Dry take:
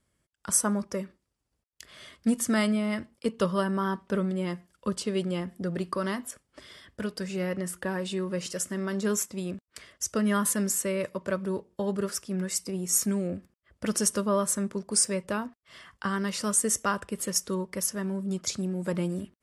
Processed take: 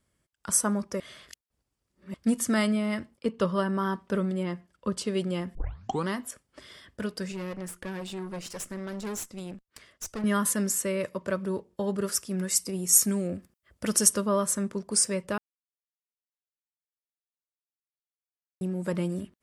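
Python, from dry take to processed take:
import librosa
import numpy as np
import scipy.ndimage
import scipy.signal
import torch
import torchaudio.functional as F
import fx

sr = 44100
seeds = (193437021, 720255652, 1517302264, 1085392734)

y = fx.lowpass(x, sr, hz=fx.line((3.16, 2800.0), (3.77, 6400.0)), slope=6, at=(3.16, 3.77), fade=0.02)
y = fx.lowpass(y, sr, hz=3300.0, slope=6, at=(4.43, 4.97))
y = fx.tube_stage(y, sr, drive_db=31.0, bias=0.75, at=(7.32, 10.24))
y = fx.high_shelf(y, sr, hz=6300.0, db=8.5, at=(12.04, 14.14))
y = fx.edit(y, sr, fx.reverse_span(start_s=1.0, length_s=1.14),
    fx.tape_start(start_s=5.55, length_s=0.53),
    fx.silence(start_s=15.38, length_s=3.23), tone=tone)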